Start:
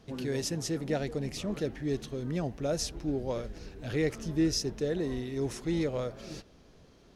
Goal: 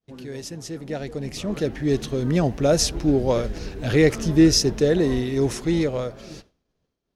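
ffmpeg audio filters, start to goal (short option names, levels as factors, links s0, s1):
-af "agate=range=0.0224:threshold=0.00562:ratio=3:detection=peak,dynaudnorm=f=300:g=11:m=7.08,volume=0.75"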